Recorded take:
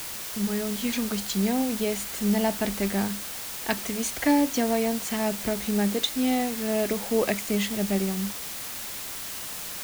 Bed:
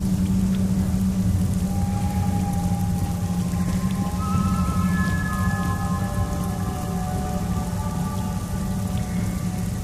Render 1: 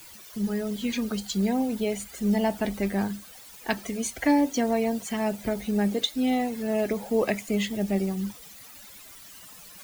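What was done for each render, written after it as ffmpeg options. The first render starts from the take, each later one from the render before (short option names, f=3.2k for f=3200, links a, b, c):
-af "afftdn=nr=15:nf=-36"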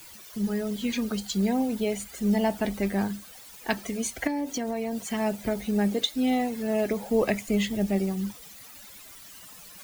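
-filter_complex "[0:a]asettb=1/sr,asplit=3[a][b][c];[a]atrim=end=4.274[d];[b]atrim=start=4.27:end=5.04,asetpts=PTS-STARTPTS,afade=t=in:d=0.004:c=qsin,afade=t=out:st=0.766:d=0.004:c=qsin,acompressor=threshold=-26dB:ratio=6:attack=3.2:release=140:knee=1:detection=peak[e];[c]atrim=start=5.036[f];[d][e]acrossfade=d=0.004:c1=hsin:c2=qsin[g];[g][f]acrossfade=d=0.004:c1=qsin:c2=hsin,asettb=1/sr,asplit=3[h][i][j];[h]atrim=end=7.104[k];[i]atrim=start=7.1:end=7.87,asetpts=PTS-STARTPTS,afade=t=in:d=0.004:c=qsin,afade=t=out:st=0.766:d=0.004:c=qsin,lowshelf=f=91:g=9.5[l];[j]atrim=start=7.866[m];[k][l]acrossfade=d=0.004:c1=hsin:c2=qsin[n];[n][m]acrossfade=d=0.004:c1=qsin:c2=hsin"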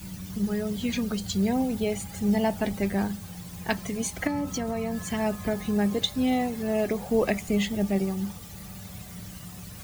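-filter_complex "[1:a]volume=-17.5dB[a];[0:a][a]amix=inputs=2:normalize=0"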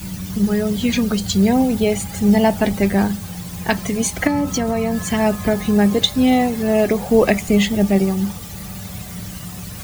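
-af "volume=10dB,alimiter=limit=-1dB:level=0:latency=1"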